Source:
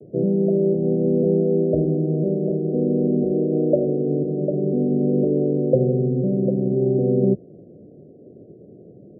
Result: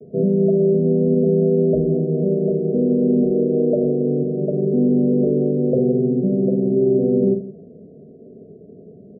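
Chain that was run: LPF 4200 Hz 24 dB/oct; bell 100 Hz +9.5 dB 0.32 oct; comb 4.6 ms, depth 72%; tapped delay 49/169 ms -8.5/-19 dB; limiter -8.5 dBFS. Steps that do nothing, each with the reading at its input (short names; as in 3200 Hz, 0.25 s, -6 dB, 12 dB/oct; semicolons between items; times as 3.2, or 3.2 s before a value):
LPF 4200 Hz: input band ends at 760 Hz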